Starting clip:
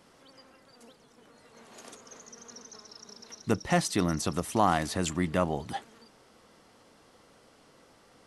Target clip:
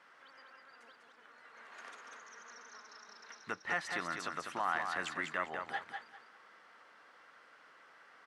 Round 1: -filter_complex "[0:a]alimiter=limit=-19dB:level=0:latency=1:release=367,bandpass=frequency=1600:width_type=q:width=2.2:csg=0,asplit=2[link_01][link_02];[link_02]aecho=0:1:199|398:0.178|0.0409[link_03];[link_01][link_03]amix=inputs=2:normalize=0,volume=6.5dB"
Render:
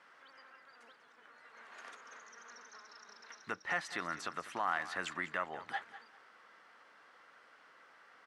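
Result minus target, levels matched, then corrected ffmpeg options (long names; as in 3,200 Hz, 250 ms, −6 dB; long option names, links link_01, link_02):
echo-to-direct −9.5 dB
-filter_complex "[0:a]alimiter=limit=-19dB:level=0:latency=1:release=367,bandpass=frequency=1600:width_type=q:width=2.2:csg=0,asplit=2[link_01][link_02];[link_02]aecho=0:1:199|398|597:0.531|0.122|0.0281[link_03];[link_01][link_03]amix=inputs=2:normalize=0,volume=6.5dB"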